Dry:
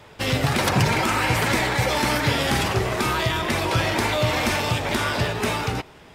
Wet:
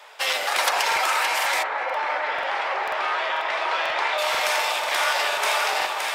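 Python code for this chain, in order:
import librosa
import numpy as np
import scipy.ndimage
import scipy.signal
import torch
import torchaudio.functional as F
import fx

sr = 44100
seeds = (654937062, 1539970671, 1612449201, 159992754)

y = scipy.signal.sosfilt(scipy.signal.butter(4, 630.0, 'highpass', fs=sr, output='sos'), x)
y = fx.echo_alternate(y, sr, ms=284, hz=1200.0, feedback_pct=80, wet_db=-4.0)
y = fx.rider(y, sr, range_db=10, speed_s=2.0)
y = fx.lowpass(y, sr, hz=fx.line((1.62, 1600.0), (4.17, 3500.0)), slope=12, at=(1.62, 4.17), fade=0.02)
y = fx.buffer_crackle(y, sr, first_s=0.38, period_s=0.49, block=2048, kind='repeat')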